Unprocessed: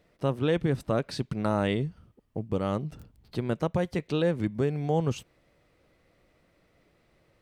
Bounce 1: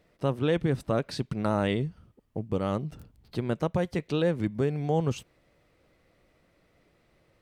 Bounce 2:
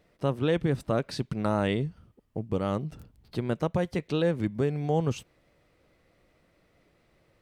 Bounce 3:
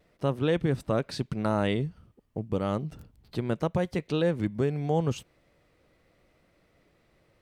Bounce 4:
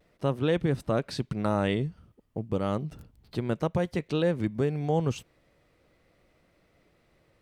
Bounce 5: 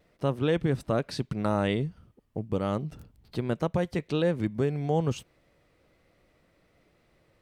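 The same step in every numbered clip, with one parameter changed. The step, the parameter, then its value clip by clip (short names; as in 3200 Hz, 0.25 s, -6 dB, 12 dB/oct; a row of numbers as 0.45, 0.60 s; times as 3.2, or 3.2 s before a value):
vibrato, rate: 12, 4.6, 0.82, 0.5, 1.2 Hz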